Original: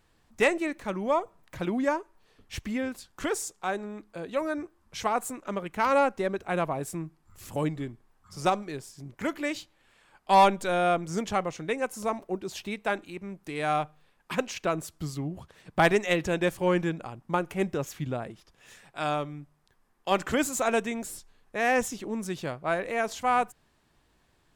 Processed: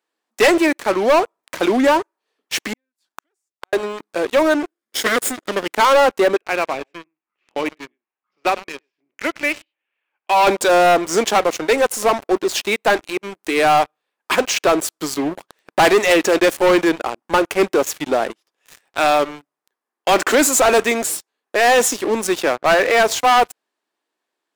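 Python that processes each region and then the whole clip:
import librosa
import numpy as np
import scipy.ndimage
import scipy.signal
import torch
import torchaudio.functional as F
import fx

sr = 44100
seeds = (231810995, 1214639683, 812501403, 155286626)

y = fx.chain(x, sr, fx.halfwave_gain(db=-7.0),
    fx.peak_eq(hz=480.0, db=-9.5, octaves=0.28),
    fx.gate_flip(shuts_db=-30.0, range_db=-32), at=(2.73, 3.73))
y = fx.chain(y, sr, fx.lower_of_two(delay_ms=0.6),
    fx.peak_eq(hz=1100.0, db=-6.5, octaves=1.5), at=(4.54, 5.74))
y = fx.chain(y, sr, fx.ladder_lowpass(hz=2900.0, resonance_pct=60),
    fx.echo_single(ms=100, db=-17.0), at=(6.36, 10.47))
y = fx.chain(y, sr, fx.bandpass_edges(low_hz=130.0, high_hz=6000.0),
    fx.peak_eq(hz=1900.0, db=3.5, octaves=1.2), at=(22.41, 23.03))
y = scipy.signal.sosfilt(scipy.signal.butter(4, 300.0, 'highpass', fs=sr, output='sos'), y)
y = fx.leveller(y, sr, passes=5)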